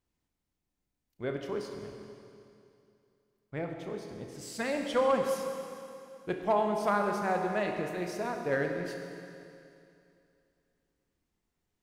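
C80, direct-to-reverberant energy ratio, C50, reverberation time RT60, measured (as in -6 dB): 5.0 dB, 3.0 dB, 4.0 dB, 2.6 s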